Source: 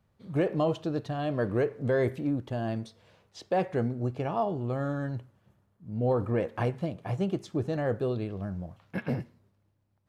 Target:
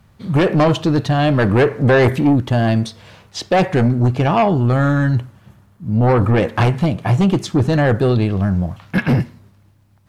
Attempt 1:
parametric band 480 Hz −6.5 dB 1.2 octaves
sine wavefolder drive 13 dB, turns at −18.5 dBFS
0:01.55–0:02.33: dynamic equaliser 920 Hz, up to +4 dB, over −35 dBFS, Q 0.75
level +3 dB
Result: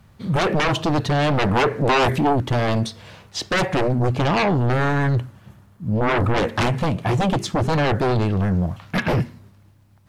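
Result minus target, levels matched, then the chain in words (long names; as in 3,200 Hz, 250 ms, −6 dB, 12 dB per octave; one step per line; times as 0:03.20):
sine wavefolder: distortion +14 dB
parametric band 480 Hz −6.5 dB 1.2 octaves
sine wavefolder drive 13 dB, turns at −12 dBFS
0:01.55–0:02.33: dynamic equaliser 920 Hz, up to +4 dB, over −35 dBFS, Q 0.75
level +3 dB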